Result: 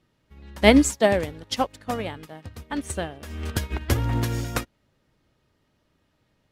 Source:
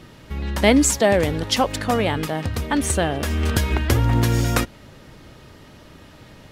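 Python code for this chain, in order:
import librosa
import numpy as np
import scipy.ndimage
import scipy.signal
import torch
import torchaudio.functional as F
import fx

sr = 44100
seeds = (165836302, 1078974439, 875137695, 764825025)

y = fx.upward_expand(x, sr, threshold_db=-29.0, expansion=2.5)
y = y * librosa.db_to_amplitude(2.0)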